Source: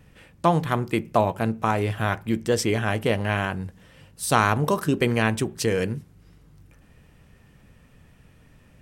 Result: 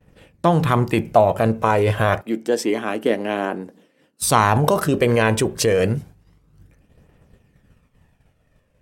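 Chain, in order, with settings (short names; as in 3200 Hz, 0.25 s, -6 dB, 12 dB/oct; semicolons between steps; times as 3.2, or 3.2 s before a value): phaser 0.28 Hz, delay 2.1 ms, feedback 37%; bell 550 Hz +5.5 dB 1.6 oct; expander -39 dBFS; 2.21–4.22 ladder high-pass 230 Hz, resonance 45%; in parallel at -2.5 dB: negative-ratio compressor -23 dBFS, ratio -0.5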